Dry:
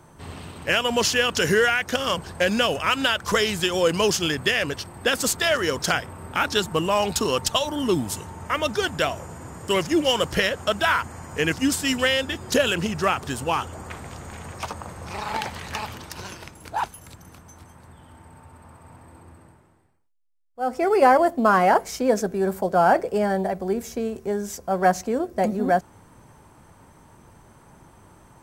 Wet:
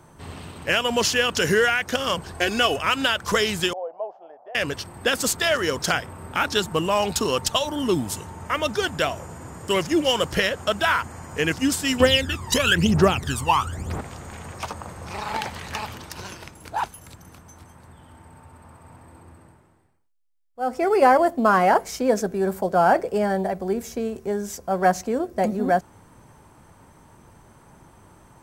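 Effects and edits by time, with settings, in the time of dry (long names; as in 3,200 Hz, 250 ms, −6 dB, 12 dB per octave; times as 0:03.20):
0:02.33–0:02.76: comb filter 2.7 ms
0:03.73–0:04.55: flat-topped band-pass 690 Hz, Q 3.2
0:12.00–0:14.01: phase shifter 1 Hz, delay 1.1 ms, feedback 75%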